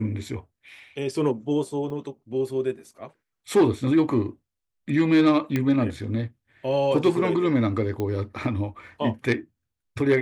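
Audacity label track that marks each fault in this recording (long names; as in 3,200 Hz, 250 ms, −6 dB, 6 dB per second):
1.900000	1.900000	drop-out 2.4 ms
5.560000	5.560000	click −12 dBFS
8.000000	8.000000	click −17 dBFS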